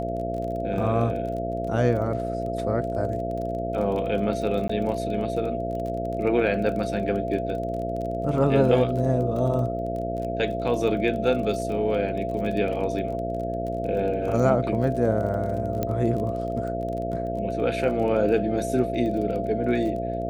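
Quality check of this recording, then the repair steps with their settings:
buzz 60 Hz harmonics 11 -31 dBFS
crackle 25 per s -32 dBFS
whine 680 Hz -29 dBFS
4.68–4.69 s: dropout 14 ms
15.83 s: pop -13 dBFS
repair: de-click; de-hum 60 Hz, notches 11; band-stop 680 Hz, Q 30; interpolate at 4.68 s, 14 ms

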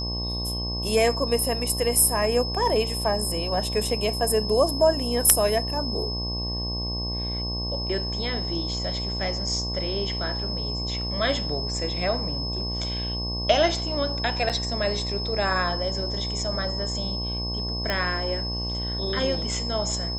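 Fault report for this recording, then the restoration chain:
buzz 60 Hz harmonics 19 -31 dBFS
whine 5.2 kHz -30 dBFS
14.49–14.50 s: dropout 7.1 ms
17.90 s: pop -11 dBFS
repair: de-click; de-hum 60 Hz, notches 19; band-stop 5.2 kHz, Q 30; interpolate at 14.49 s, 7.1 ms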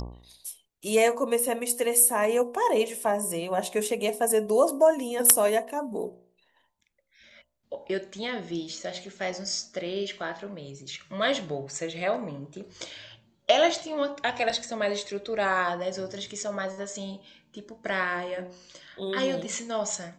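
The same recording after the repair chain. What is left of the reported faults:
nothing left

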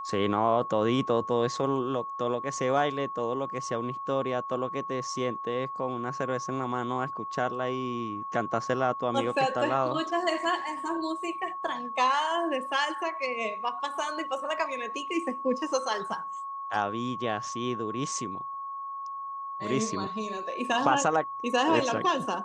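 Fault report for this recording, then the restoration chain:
whine 1.1 kHz -34 dBFS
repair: band-stop 1.1 kHz, Q 30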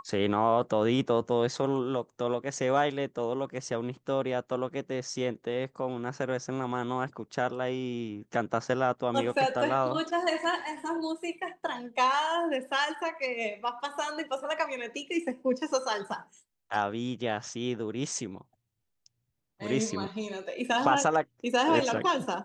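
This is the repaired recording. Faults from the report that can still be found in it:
nothing left

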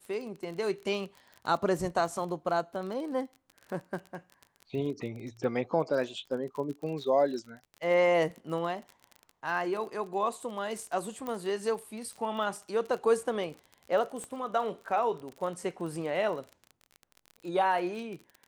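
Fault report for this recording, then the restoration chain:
crackle 34 per s -37 dBFS
11.27 s: pop -23 dBFS
14.24 s: pop -27 dBFS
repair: de-click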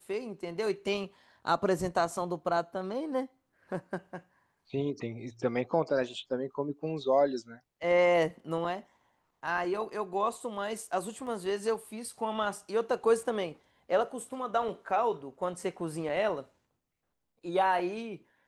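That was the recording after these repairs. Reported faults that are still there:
11.27 s: pop
14.24 s: pop

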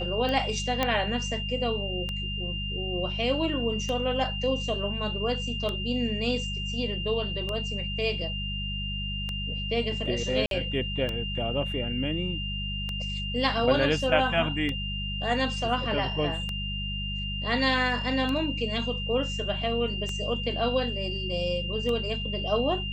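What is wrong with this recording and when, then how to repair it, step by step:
hum 50 Hz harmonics 4 -34 dBFS
tick 33 1/3 rpm -18 dBFS
whine 2.8 kHz -33 dBFS
0.83 s: pop -10 dBFS
10.46–10.51 s: dropout 52 ms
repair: de-click; de-hum 50 Hz, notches 4; band-stop 2.8 kHz, Q 30; interpolate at 10.46 s, 52 ms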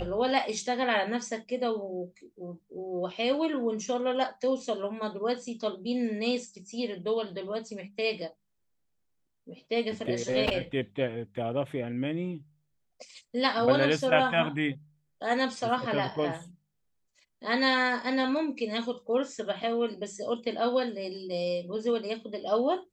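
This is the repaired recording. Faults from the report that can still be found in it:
nothing left

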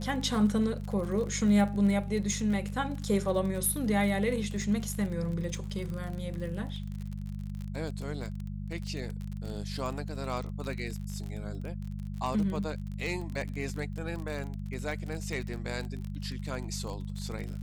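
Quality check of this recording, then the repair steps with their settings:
crackle 37 per s -35 dBFS
hum 50 Hz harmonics 4 -37 dBFS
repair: de-click; de-hum 50 Hz, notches 4

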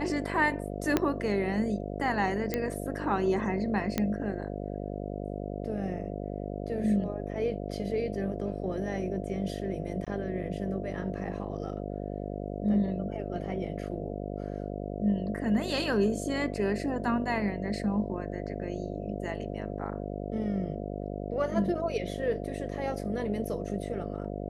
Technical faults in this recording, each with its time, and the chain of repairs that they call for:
buzz 50 Hz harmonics 14 -36 dBFS
0.97 s: pop -10 dBFS
2.54 s: pop -14 dBFS
3.98 s: pop -13 dBFS
10.05–10.07 s: dropout 16 ms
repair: de-click; de-hum 50 Hz, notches 14; interpolate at 10.05 s, 16 ms

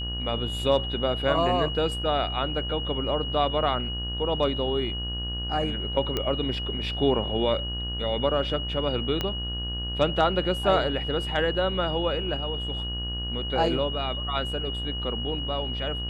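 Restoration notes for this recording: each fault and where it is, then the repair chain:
buzz 60 Hz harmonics 31 -33 dBFS
whine 2.9 kHz -32 dBFS
6.17 s: pop -13 dBFS
9.21 s: pop -13 dBFS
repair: de-click; de-hum 60 Hz, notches 31; band-stop 2.9 kHz, Q 30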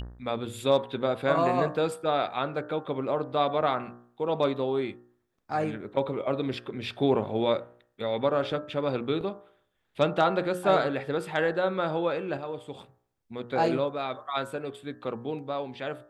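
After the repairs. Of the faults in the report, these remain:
9.21 s: pop

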